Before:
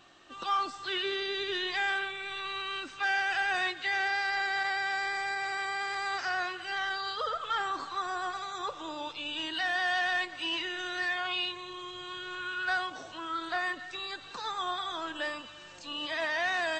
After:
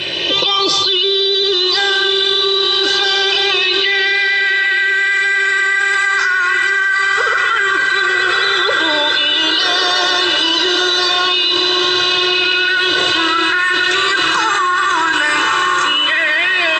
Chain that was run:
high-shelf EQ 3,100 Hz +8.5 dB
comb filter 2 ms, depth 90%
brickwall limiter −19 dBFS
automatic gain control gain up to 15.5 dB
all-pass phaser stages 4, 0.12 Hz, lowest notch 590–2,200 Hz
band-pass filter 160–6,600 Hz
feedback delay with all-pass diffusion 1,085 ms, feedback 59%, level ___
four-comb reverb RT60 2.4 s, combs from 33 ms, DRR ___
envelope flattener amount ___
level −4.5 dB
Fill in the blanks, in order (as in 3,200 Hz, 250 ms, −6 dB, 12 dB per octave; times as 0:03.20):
−7 dB, 16.5 dB, 100%